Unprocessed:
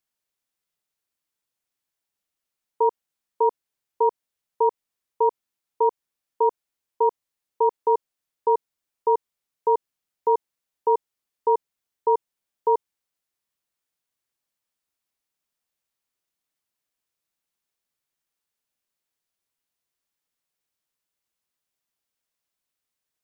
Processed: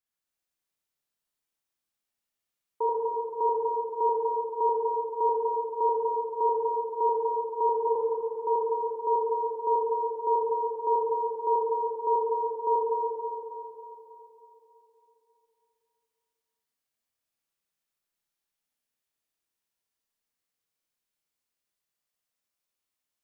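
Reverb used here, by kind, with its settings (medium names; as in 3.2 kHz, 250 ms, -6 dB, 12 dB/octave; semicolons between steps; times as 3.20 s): Schroeder reverb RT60 3.4 s, combs from 27 ms, DRR -5.5 dB; trim -8.5 dB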